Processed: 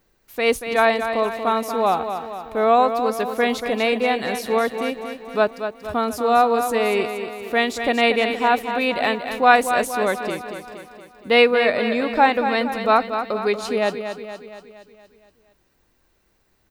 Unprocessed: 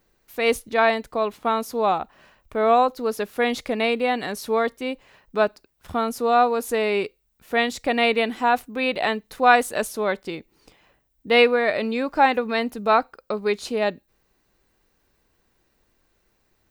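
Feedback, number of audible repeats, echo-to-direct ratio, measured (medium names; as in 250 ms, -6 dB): 55%, 6, -7.0 dB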